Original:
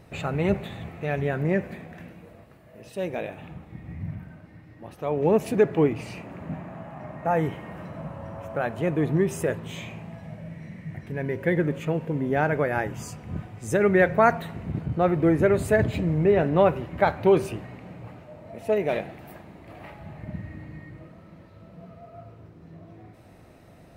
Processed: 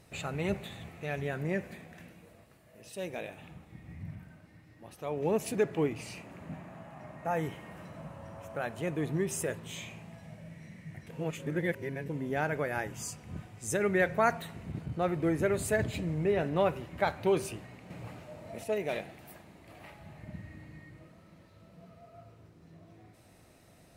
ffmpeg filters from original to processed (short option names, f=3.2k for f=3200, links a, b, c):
-filter_complex "[0:a]asettb=1/sr,asplit=3[a][b][c];[a]atrim=end=17.904[d];[b]atrim=start=17.9:end=18.64,asetpts=PTS-STARTPTS,afade=t=in:d=0.004:c=qsin,afade=t=out:st=0.736:d=0.004:c=qsin,acontrast=50[e];[c]atrim=start=18.636[f];[d][e]acrossfade=d=0.004:c1=hsin:c2=qsin[g];[g][f]acrossfade=d=0.004:c1=qsin:c2=hsin,asplit=3[h][i][j];[h]atrim=end=11.092[k];[i]atrim=start=11.088:end=12.092,asetpts=PTS-STARTPTS,areverse[l];[j]atrim=start=12.088[m];[k][l]acrossfade=d=0.004:c1=hsin:c2=hsin[n];[n][m]acrossfade=d=0.004:c1=hsin:c2=hsin,equalizer=f=8.8k:t=o:w=2.6:g=12,volume=-9dB"